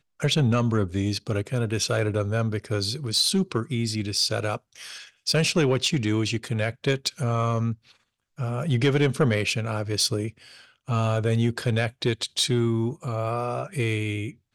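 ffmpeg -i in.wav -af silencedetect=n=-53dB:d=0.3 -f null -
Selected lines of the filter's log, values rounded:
silence_start: 7.97
silence_end: 8.38 | silence_duration: 0.41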